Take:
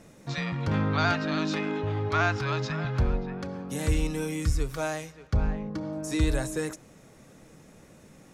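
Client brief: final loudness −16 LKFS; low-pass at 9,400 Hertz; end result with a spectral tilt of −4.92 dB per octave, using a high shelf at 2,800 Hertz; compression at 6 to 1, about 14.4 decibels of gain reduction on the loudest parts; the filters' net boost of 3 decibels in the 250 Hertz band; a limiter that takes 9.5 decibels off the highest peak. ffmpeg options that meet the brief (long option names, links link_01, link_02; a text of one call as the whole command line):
ffmpeg -i in.wav -af "lowpass=9400,equalizer=frequency=250:width_type=o:gain=4,highshelf=frequency=2800:gain=8,acompressor=threshold=-35dB:ratio=6,volume=26dB,alimiter=limit=-6.5dB:level=0:latency=1" out.wav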